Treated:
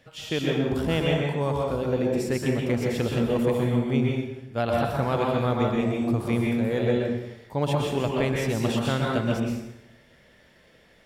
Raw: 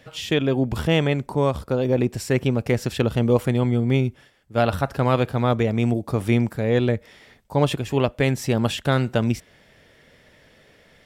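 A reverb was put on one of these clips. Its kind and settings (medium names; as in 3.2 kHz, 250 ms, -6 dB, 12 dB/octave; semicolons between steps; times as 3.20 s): plate-style reverb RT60 0.91 s, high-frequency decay 0.8×, pre-delay 110 ms, DRR -2 dB; trim -7 dB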